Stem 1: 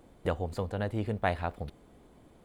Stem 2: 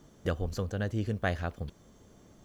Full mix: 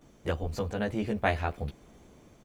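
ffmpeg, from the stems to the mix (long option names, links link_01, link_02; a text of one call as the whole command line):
ffmpeg -i stem1.wav -i stem2.wav -filter_complex "[0:a]dynaudnorm=framelen=220:gausssize=5:maxgain=7dB,volume=-6.5dB[link_01];[1:a]adelay=14,volume=-1.5dB[link_02];[link_01][link_02]amix=inputs=2:normalize=0,equalizer=frequency=2400:width=4:gain=5.5" out.wav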